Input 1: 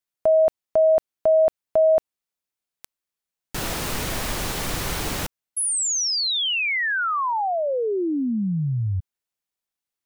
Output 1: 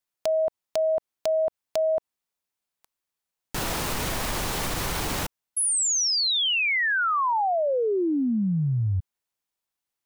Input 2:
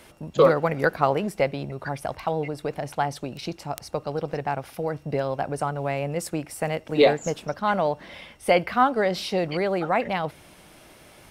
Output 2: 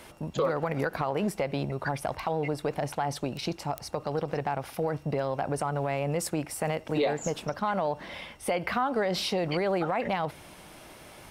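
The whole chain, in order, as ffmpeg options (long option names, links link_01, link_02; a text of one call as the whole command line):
ffmpeg -i in.wav -af "equalizer=frequency=940:width=2:gain=3,acompressor=threshold=-22dB:ratio=8:attack=0.6:release=180:knee=1:detection=peak,aeval=exprs='(mod(7.08*val(0)+1,2)-1)/7.08':channel_layout=same,volume=1dB" out.wav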